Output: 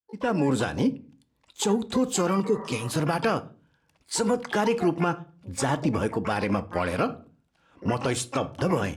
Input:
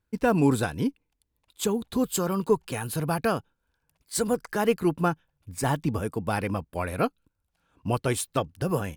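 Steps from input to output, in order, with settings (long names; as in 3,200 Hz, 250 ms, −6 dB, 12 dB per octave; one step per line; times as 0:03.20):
fade in at the beginning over 0.78 s
in parallel at −2 dB: downward compressor 8 to 1, threshold −36 dBFS, peak gain reduction 19.5 dB
on the sum: high-pass filter 130 Hz 6 dB per octave
pitch-shifted copies added +12 semitones −12 dB
on a send at −14 dB: convolution reverb RT60 0.40 s, pre-delay 4 ms
on the sum: brickwall limiter −17.5 dBFS, peak gain reduction 8.5 dB
high-frequency loss of the air 65 metres
healed spectral selection 0:02.47–0:02.88, 500–2,100 Hz before
dynamic equaliser 6,800 Hz, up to +5 dB, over −54 dBFS, Q 1.3
level +3.5 dB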